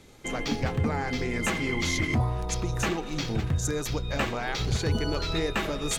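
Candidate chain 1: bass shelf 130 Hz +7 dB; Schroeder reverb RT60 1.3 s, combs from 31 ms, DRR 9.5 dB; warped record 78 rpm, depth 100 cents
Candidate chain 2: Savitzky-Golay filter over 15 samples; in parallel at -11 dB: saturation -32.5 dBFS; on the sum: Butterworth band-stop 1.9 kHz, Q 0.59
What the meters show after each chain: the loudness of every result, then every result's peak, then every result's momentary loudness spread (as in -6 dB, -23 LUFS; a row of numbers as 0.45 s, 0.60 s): -26.5 LUFS, -29.5 LUFS; -11.0 dBFS, -16.0 dBFS; 4 LU, 4 LU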